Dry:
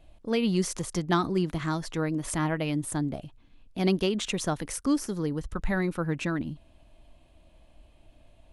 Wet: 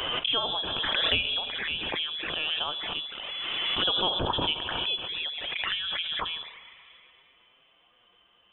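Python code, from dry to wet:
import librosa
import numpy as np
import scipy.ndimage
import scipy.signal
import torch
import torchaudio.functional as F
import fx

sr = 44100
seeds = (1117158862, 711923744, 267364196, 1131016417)

y = scipy.signal.sosfilt(scipy.signal.butter(2, 640.0, 'highpass', fs=sr, output='sos'), x)
y = fx.rev_plate(y, sr, seeds[0], rt60_s=3.1, hf_ratio=0.8, predelay_ms=0, drr_db=12.0)
y = fx.env_flanger(y, sr, rest_ms=8.9, full_db=-33.5)
y = fx.freq_invert(y, sr, carrier_hz=3700)
y = fx.pre_swell(y, sr, db_per_s=20.0)
y = y * 10.0 ** (6.5 / 20.0)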